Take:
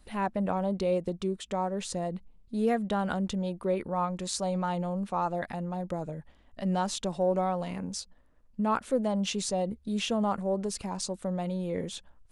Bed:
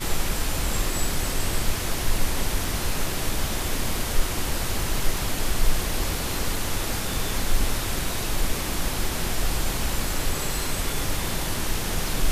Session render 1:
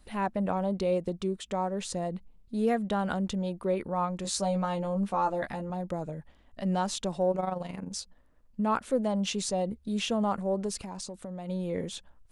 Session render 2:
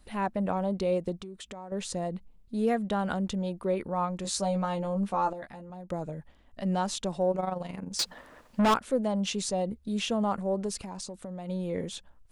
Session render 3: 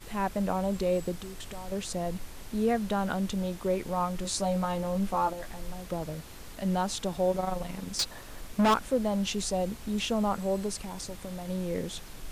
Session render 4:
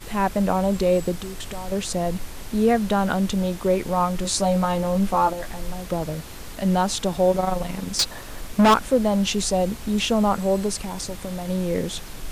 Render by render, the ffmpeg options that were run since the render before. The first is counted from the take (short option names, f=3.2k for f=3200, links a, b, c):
-filter_complex "[0:a]asettb=1/sr,asplit=3[a][b][c];[a]atrim=end=4.234[d];[b]atrim=start=4.23:end=5.7,asetpts=PTS-STARTPTS,afade=t=in:d=0.004:c=qsin,afade=t=out:st=1.466:d=0.004:c=qsin,asplit=2[e][f];[f]adelay=15,volume=-4dB[g];[e][g]amix=inputs=2:normalize=0,atrim=end_sample=64827[h];[c]atrim=start=5.696[i];[d][h]acrossfade=d=0.004:c1=hsin:c2=qsin[j];[j][i]acrossfade=d=0.004:c1=qsin:c2=hsin,asettb=1/sr,asplit=3[k][l][m];[k]atrim=end=7.314[n];[l]atrim=start=7.31:end=7.93,asetpts=PTS-STARTPTS,afade=t=in:d=0.004:c=qsin,afade=t=out:st=0.616:d=0.004:c=qsin,tremolo=f=23:d=0.667[o];[m]atrim=start=7.926[p];[n][o]acrossfade=d=0.004:c1=hsin:c2=qsin[q];[q][p]acrossfade=d=0.004:c1=qsin:c2=hsin,asplit=3[r][s][t];[r]afade=t=out:st=10.83:d=0.02[u];[s]acompressor=threshold=-35dB:ratio=6:attack=3.2:release=140:knee=1:detection=peak,afade=t=in:st=10.83:d=0.02,afade=t=out:st=11.48:d=0.02[v];[t]afade=t=in:st=11.48:d=0.02[w];[u][v][w]amix=inputs=3:normalize=0"
-filter_complex "[0:a]asettb=1/sr,asplit=3[a][b][c];[a]atrim=end=1.194[d];[b]atrim=start=1.19:end=1.72,asetpts=PTS-STARTPTS,afade=t=in:d=0.004:c=qsin,afade=t=out:st=0.526:d=0.004:c=qsin,acompressor=threshold=-38dB:ratio=12:attack=3.2:release=140:knee=1:detection=peak[e];[c]atrim=start=1.716[f];[d][e]acrossfade=d=0.004:c1=hsin:c2=qsin[g];[g][f]acrossfade=d=0.004:c1=qsin:c2=hsin,asettb=1/sr,asplit=3[h][i][j];[h]atrim=end=7.994[k];[i]atrim=start=7.99:end=8.74,asetpts=PTS-STARTPTS,afade=t=in:d=0.004:c=qsin,afade=t=out:st=0.746:d=0.004:c=qsin,asplit=2[l][m];[m]highpass=f=720:p=1,volume=31dB,asoftclip=type=tanh:threshold=-16dB[n];[l][n]amix=inputs=2:normalize=0,lowpass=f=5.1k:p=1,volume=-6dB[o];[j]atrim=start=8.736[p];[k][o]acrossfade=d=0.004:c1=hsin:c2=qsin[q];[q][p]acrossfade=d=0.004:c1=qsin:c2=hsin,asplit=3[r][s][t];[r]atrim=end=5.332[u];[s]atrim=start=5.328:end=5.902,asetpts=PTS-STARTPTS,volume=-9dB[v];[t]atrim=start=5.898[w];[u][v]acrossfade=d=0.004:c1=hsin:c2=hsin[x];[x][w]acrossfade=d=0.004:c1=hsin:c2=hsin"
-filter_complex "[1:a]volume=-19.5dB[a];[0:a][a]amix=inputs=2:normalize=0"
-af "volume=8dB"